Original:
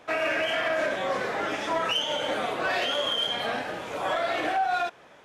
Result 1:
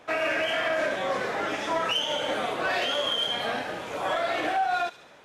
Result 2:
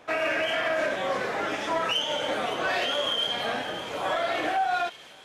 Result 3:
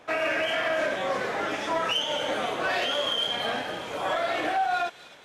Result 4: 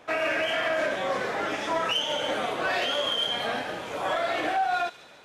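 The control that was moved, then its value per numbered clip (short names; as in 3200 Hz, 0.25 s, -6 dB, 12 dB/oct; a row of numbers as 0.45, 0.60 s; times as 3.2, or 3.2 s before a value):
thin delay, time: 72, 564, 257, 144 ms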